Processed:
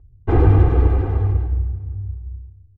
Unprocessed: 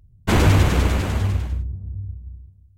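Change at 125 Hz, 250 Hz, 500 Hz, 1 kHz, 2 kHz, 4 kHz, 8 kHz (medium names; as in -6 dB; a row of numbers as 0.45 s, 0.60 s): +3.0 dB, -0.5 dB, +2.5 dB, -2.0 dB, -10.0 dB, under -20 dB, under -30 dB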